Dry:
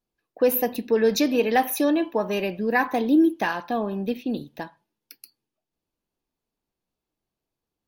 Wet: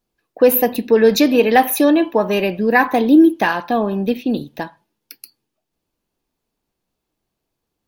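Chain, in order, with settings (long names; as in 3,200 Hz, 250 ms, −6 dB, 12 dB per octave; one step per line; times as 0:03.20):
dynamic equaliser 5,700 Hz, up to −5 dB, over −55 dBFS, Q 3.6
level +8 dB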